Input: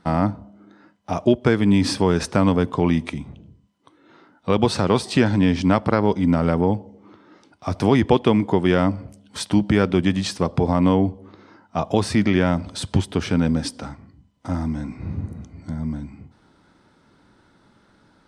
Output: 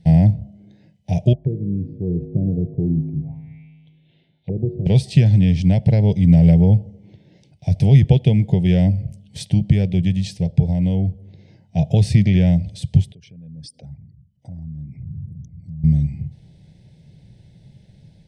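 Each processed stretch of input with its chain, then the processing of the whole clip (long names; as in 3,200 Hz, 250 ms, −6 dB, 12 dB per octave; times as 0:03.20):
0:01.33–0:04.86: tuned comb filter 52 Hz, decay 1.8 s, harmonics odd, mix 80% + envelope-controlled low-pass 350–3,500 Hz down, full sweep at −32.5 dBFS
0:13.12–0:15.84: spectral envelope exaggerated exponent 2 + RIAA equalisation recording + downward compressor 2.5 to 1, threshold −45 dBFS
whole clip: Chebyshev band-stop filter 630–2,300 Hz, order 2; low shelf with overshoot 200 Hz +11 dB, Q 3; automatic gain control gain up to 3 dB; level −1 dB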